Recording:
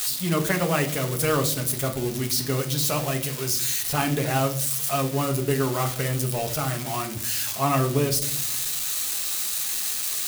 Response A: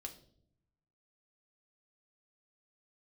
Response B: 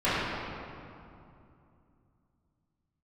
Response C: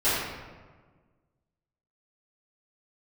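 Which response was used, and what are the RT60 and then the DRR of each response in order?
A; not exponential, 2.6 s, 1.5 s; 3.0, -16.0, -15.5 dB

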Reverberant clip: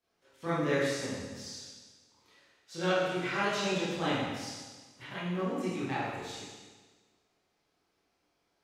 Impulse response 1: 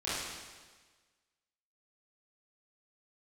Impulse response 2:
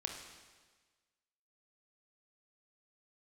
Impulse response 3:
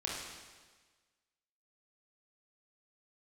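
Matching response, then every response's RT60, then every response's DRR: 1; 1.4, 1.4, 1.4 s; -12.0, 2.0, -4.5 dB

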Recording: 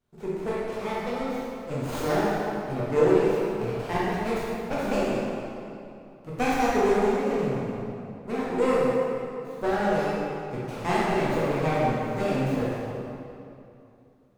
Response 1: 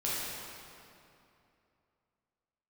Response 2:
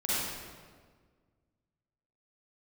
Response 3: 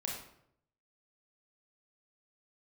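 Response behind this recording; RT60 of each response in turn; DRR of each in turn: 1; 2.7, 1.6, 0.70 s; -8.5, -10.0, -2.0 dB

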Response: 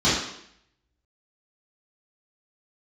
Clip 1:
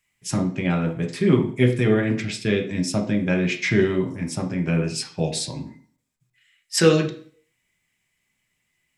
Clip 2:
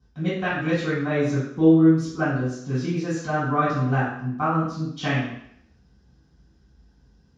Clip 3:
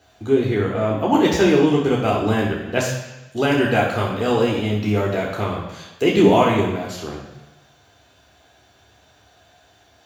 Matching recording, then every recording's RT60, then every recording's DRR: 2; 0.45, 0.70, 1.0 s; 3.0, -11.5, -4.0 dB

